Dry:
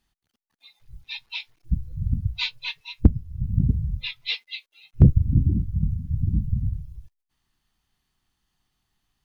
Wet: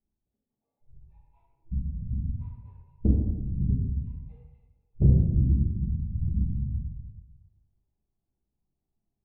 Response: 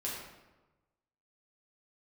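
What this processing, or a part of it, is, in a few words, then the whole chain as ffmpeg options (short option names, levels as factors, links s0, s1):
next room: -filter_complex "[0:a]lowpass=f=670:w=0.5412,lowpass=f=670:w=1.3066[s0];[1:a]atrim=start_sample=2205[s1];[s0][s1]afir=irnorm=-1:irlink=0,volume=0.447"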